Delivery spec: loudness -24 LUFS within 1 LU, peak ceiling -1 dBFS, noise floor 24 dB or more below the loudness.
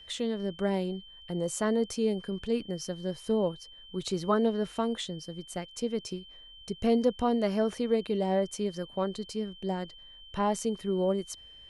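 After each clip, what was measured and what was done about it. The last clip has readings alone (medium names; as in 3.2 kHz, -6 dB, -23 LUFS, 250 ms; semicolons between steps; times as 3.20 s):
steady tone 3.1 kHz; tone level -49 dBFS; loudness -31.0 LUFS; peak level -13.5 dBFS; loudness target -24.0 LUFS
-> band-stop 3.1 kHz, Q 30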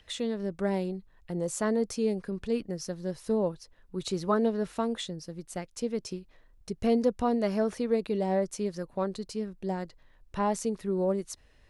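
steady tone not found; loudness -31.0 LUFS; peak level -14.0 dBFS; loudness target -24.0 LUFS
-> trim +7 dB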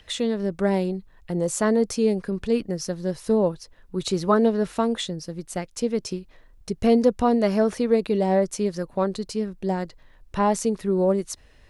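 loudness -24.0 LUFS; peak level -7.0 dBFS; noise floor -53 dBFS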